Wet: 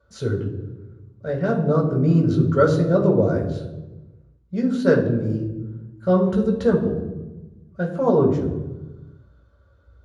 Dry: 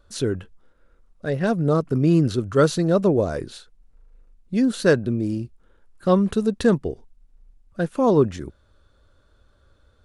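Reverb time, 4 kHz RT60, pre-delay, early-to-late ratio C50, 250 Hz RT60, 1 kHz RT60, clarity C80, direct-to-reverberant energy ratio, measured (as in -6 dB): 1.1 s, 0.75 s, 3 ms, 7.0 dB, 1.5 s, 1.0 s, 9.5 dB, -3.0 dB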